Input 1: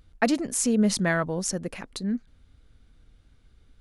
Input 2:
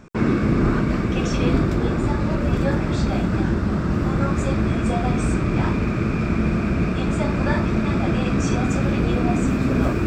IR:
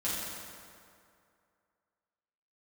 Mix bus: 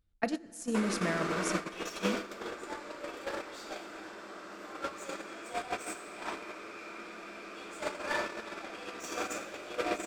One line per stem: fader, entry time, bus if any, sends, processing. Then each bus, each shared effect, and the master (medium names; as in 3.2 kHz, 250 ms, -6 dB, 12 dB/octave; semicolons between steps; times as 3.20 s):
0.0 dB, 0.00 s, send -14.5 dB, none
+3.0 dB, 0.60 s, send -4.5 dB, high-pass 360 Hz 24 dB/octave; tilt EQ +2 dB/octave; saturation -27.5 dBFS, distortion -11 dB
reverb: on, RT60 2.4 s, pre-delay 5 ms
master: gate -20 dBFS, range -21 dB; compression 16:1, threshold -27 dBFS, peak gain reduction 14 dB